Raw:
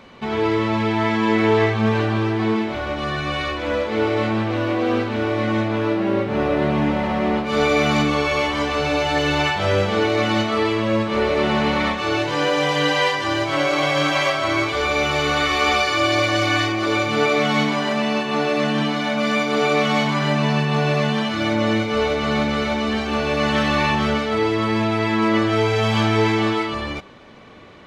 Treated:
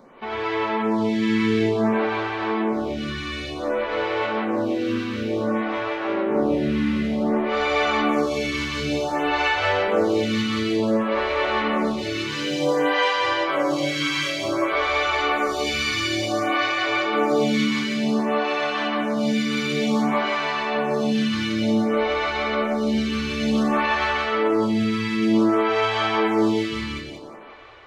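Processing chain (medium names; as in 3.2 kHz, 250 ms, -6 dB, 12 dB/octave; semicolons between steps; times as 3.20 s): two-band feedback delay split 360 Hz, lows 104 ms, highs 178 ms, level -3 dB; lamp-driven phase shifter 0.55 Hz; trim -1.5 dB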